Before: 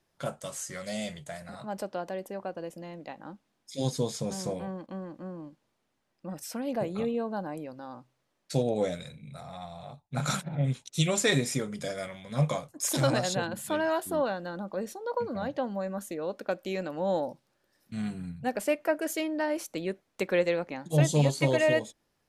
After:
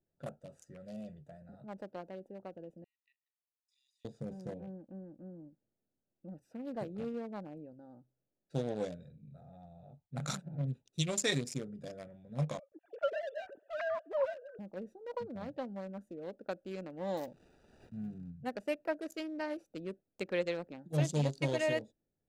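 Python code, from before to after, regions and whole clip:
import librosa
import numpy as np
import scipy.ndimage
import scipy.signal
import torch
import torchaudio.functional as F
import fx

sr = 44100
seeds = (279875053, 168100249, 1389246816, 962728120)

y = fx.chain(x, sr, fx.leveller(passes=1),
    fx.brickwall_highpass(low_hz=1800.0),
    fx.level_steps(step_db=16), at=(2.84, 4.05))
y = fx.chain(y, sr, fx.sine_speech(),
    fx.lowpass(hz=2900.0, slope=12),
    fx.echo_feedback(ms=129, feedback_pct=52, wet_db=-24), at=(12.59, 14.59))
y = fx.chain(y, sr, fx.crossing_spikes(level_db=-35.0),
    fx.resample_bad(factor=3, down='none', up='hold'), at=(17.17, 18.3))
y = fx.wiener(y, sr, points=41)
y = fx.dynamic_eq(y, sr, hz=5500.0, q=0.94, threshold_db=-53.0, ratio=4.0, max_db=6)
y = F.gain(torch.from_numpy(y), -7.5).numpy()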